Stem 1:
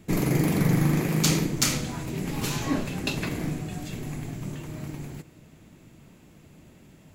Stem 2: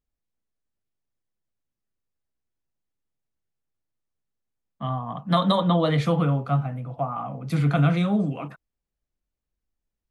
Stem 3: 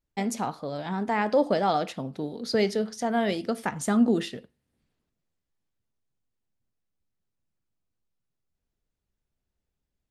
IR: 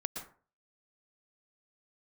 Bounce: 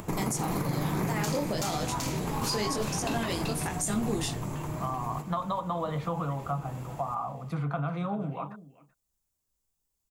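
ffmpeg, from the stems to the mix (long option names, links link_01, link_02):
-filter_complex "[0:a]acompressor=mode=upward:threshold=-36dB:ratio=2.5,volume=2dB,asplit=2[link_01][link_02];[link_02]volume=-12.5dB[link_03];[1:a]lowpass=frequency=3500:poles=1,volume=-5dB,asplit=2[link_04][link_05];[link_05]volume=-20.5dB[link_06];[2:a]aemphasis=mode=production:type=75fm,flanger=delay=18.5:depth=6.4:speed=1,equalizer=frequency=7300:width_type=o:width=1:gain=7.5,volume=-3dB[link_07];[link_01][link_04]amix=inputs=2:normalize=0,equalizer=frequency=250:width_type=o:width=1:gain=-5,equalizer=frequency=1000:width_type=o:width=1:gain=11,equalizer=frequency=2000:width_type=o:width=1:gain=-5,equalizer=frequency=4000:width_type=o:width=1:gain=-4,acompressor=threshold=-28dB:ratio=6,volume=0dB[link_08];[link_03][link_06]amix=inputs=2:normalize=0,aecho=0:1:383:1[link_09];[link_07][link_08][link_09]amix=inputs=3:normalize=0,alimiter=limit=-20dB:level=0:latency=1:release=57"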